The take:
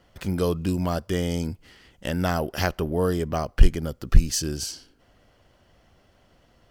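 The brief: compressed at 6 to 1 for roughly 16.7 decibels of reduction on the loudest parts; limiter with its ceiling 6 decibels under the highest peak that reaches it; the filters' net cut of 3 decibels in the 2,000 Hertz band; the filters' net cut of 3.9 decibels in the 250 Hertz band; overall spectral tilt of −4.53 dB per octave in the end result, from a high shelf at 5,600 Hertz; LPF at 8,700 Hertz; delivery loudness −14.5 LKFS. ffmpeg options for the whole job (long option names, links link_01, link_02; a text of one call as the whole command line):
ffmpeg -i in.wav -af "lowpass=8700,equalizer=frequency=250:width_type=o:gain=-6,equalizer=frequency=2000:width_type=o:gain=-5,highshelf=frequency=5600:gain=8,acompressor=threshold=-25dB:ratio=6,volume=19dB,alimiter=limit=-1.5dB:level=0:latency=1" out.wav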